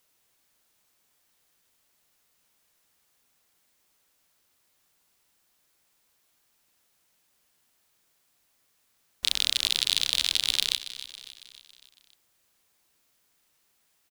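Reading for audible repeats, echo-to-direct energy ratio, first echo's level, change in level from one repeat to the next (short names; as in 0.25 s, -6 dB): 4, -12.5 dB, -14.0 dB, -5.5 dB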